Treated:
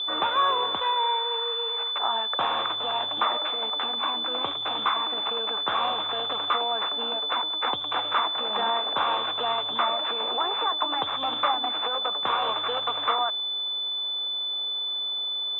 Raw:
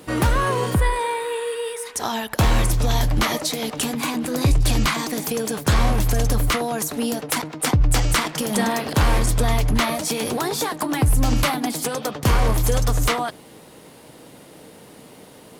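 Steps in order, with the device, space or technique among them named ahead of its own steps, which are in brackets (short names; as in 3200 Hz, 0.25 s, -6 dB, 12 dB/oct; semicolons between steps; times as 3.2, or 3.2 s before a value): toy sound module (decimation joined by straight lines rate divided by 4×; pulse-width modulation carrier 3500 Hz; speaker cabinet 760–4900 Hz, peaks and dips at 830 Hz +3 dB, 1200 Hz +5 dB, 1900 Hz -5 dB, 3300 Hz +7 dB, 4700 Hz -8 dB)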